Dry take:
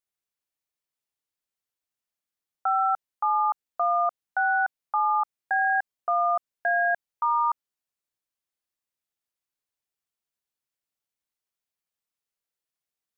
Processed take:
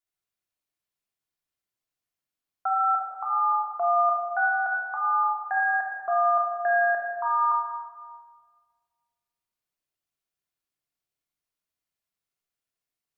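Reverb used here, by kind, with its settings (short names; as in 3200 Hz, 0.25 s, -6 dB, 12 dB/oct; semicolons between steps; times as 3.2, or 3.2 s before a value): shoebox room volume 2300 m³, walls mixed, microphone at 3.2 m; gain -4.5 dB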